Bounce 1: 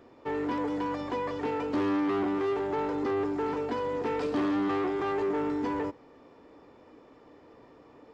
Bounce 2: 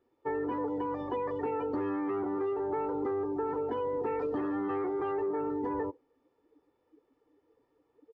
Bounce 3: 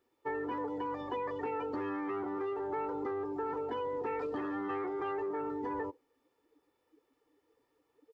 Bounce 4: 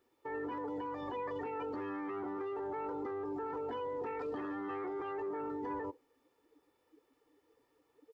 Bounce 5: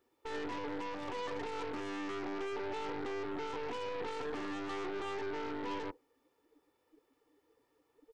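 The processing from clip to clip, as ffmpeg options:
-af "afftdn=nr=21:nf=-37,aecho=1:1:2.3:0.4,acompressor=threshold=-29dB:ratio=6"
-af "tiltshelf=f=1.3k:g=-5.5"
-af "alimiter=level_in=10.5dB:limit=-24dB:level=0:latency=1:release=28,volume=-10.5dB,volume=2dB"
-af "aeval=exprs='0.0251*(cos(1*acos(clip(val(0)/0.0251,-1,1)))-cos(1*PI/2))+0.00708*(cos(6*acos(clip(val(0)/0.0251,-1,1)))-cos(6*PI/2))+0.00224*(cos(8*acos(clip(val(0)/0.0251,-1,1)))-cos(8*PI/2))':c=same,volume=-1dB"

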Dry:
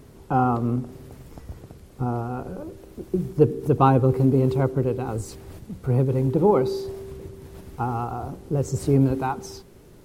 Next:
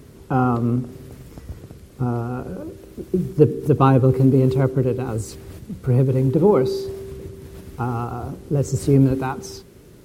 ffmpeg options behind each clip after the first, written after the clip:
-af "highpass=42,equalizer=f=810:w=1.8:g=-6,volume=4dB"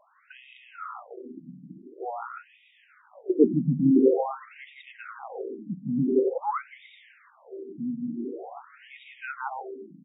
-filter_complex "[0:a]asplit=2[a][b];[b]aecho=0:1:160|280|370|437.5|488.1:0.631|0.398|0.251|0.158|0.1[c];[a][c]amix=inputs=2:normalize=0,afftfilt=real='re*between(b*sr/1024,200*pow(2700/200,0.5+0.5*sin(2*PI*0.47*pts/sr))/1.41,200*pow(2700/200,0.5+0.5*sin(2*PI*0.47*pts/sr))*1.41)':imag='im*between(b*sr/1024,200*pow(2700/200,0.5+0.5*sin(2*PI*0.47*pts/sr))/1.41,200*pow(2700/200,0.5+0.5*sin(2*PI*0.47*pts/sr))*1.41)':win_size=1024:overlap=0.75"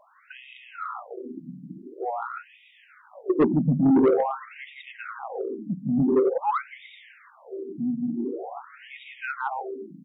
-af "asoftclip=type=tanh:threshold=-18dB,volume=4.5dB"

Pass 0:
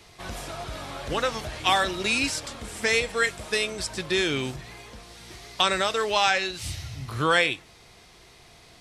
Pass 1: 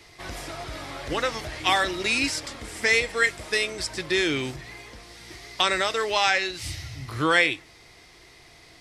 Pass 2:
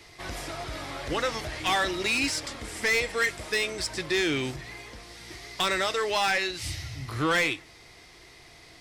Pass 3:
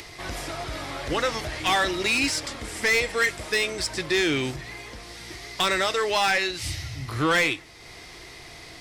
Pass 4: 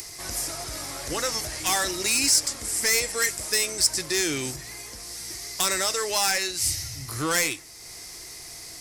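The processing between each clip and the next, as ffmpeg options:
-af "equalizer=f=200:t=o:w=0.33:g=-5,equalizer=f=315:t=o:w=0.33:g=6,equalizer=f=2k:t=o:w=0.33:g=7,equalizer=f=5k:t=o:w=0.33:g=4,volume=-1dB"
-af "asoftclip=type=tanh:threshold=-19dB"
-af "acompressor=mode=upward:threshold=-39dB:ratio=2.5,volume=3dB"
-af "aexciter=amount=5.2:drive=6.9:freq=4.9k,volume=-4.5dB"

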